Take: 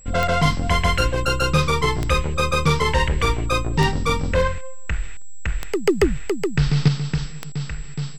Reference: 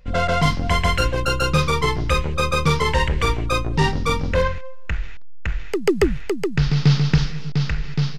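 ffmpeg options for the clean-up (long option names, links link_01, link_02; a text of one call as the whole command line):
ffmpeg -i in.wav -af "adeclick=threshold=4,bandreject=frequency=7700:width=30,asetnsamples=nb_out_samples=441:pad=0,asendcmd='6.88 volume volume 6.5dB',volume=0dB" out.wav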